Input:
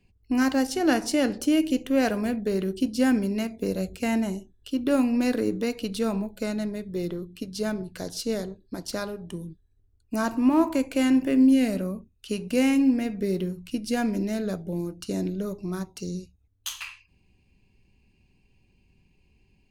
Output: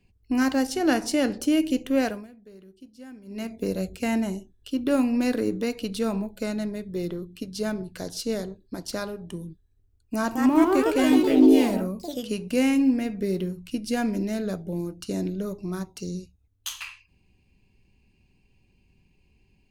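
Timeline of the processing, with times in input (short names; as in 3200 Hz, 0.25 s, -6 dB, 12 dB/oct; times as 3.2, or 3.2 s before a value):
1.98–3.54 dip -22 dB, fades 0.29 s
10.15–12.48 echoes that change speed 0.202 s, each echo +3 st, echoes 3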